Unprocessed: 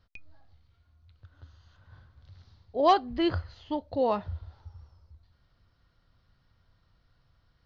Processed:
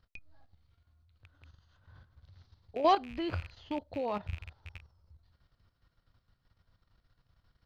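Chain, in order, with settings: rattle on loud lows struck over -43 dBFS, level -32 dBFS; level held to a coarse grid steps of 11 dB

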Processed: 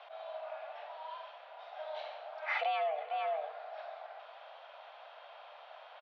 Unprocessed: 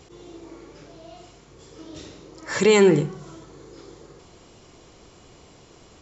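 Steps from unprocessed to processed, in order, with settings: echo from a far wall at 78 m, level -13 dB; compression 10:1, threshold -30 dBFS, peak gain reduction 18.5 dB; mistuned SSB +300 Hz 270–3300 Hz

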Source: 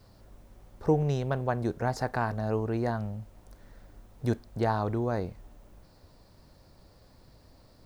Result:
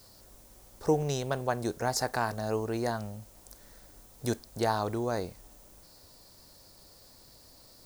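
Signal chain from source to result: tone controls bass -6 dB, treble +15 dB

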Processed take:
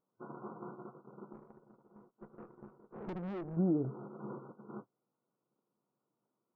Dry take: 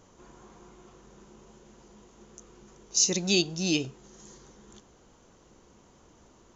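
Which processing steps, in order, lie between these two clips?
gate -51 dBFS, range -37 dB; FFT band-pass 110–1500 Hz; compression 20:1, threshold -37 dBFS, peak gain reduction 16 dB; 1.33–3.57 s: valve stage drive 48 dB, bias 0.7; trim +10 dB

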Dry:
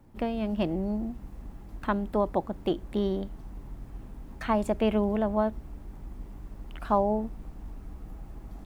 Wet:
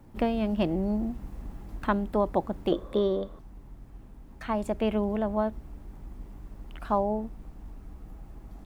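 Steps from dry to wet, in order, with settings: 2.72–3.39 s: small resonant body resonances 530/1100/3500 Hz, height 17 dB, ringing for 20 ms; gain riding 0.5 s

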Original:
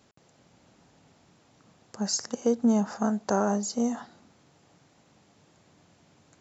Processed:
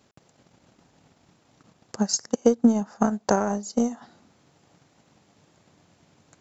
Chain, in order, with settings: transient shaper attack +8 dB, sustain -9 dB, from 4.01 s sustain 0 dB

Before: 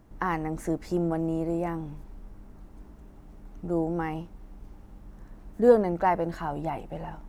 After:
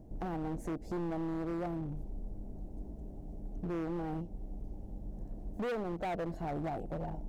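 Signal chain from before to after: FFT filter 720 Hz 0 dB, 1.2 kHz -23 dB, 6.4 kHz -11 dB; compression 2:1, threshold -39 dBFS, peak gain reduction 14.5 dB; hard clipper -37 dBFS, distortion -7 dB; trim +4 dB

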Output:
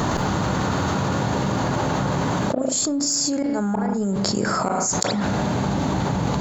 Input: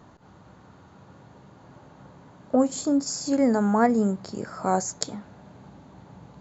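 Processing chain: treble shelf 3.5 kHz +7 dB; inverted gate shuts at -12 dBFS, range -29 dB; in parallel at -5 dB: saturation -20.5 dBFS, distortion -13 dB; on the sum: spring tank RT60 1.1 s, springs 35 ms, DRR 14 dB; level flattener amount 100%; trim -7 dB

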